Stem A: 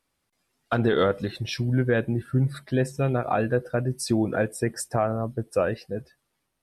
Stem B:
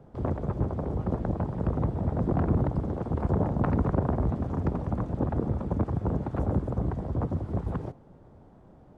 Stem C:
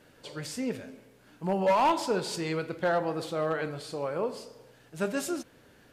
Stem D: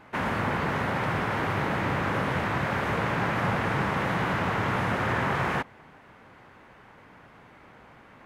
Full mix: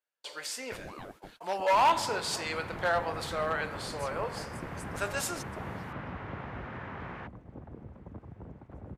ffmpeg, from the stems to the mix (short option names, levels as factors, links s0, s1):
-filter_complex "[0:a]acompressor=threshold=0.0562:ratio=4,aeval=exprs='val(0)*sin(2*PI*450*n/s+450*0.85/4.2*sin(2*PI*4.2*n/s))':c=same,volume=0.2[s0];[1:a]adelay=2350,volume=0.119[s1];[2:a]highpass=770,volume=1.41[s2];[3:a]lowpass=3300,adelay=1650,volume=0.168[s3];[s0][s1][s2][s3]amix=inputs=4:normalize=0,agate=range=0.0178:threshold=0.00282:ratio=16:detection=peak"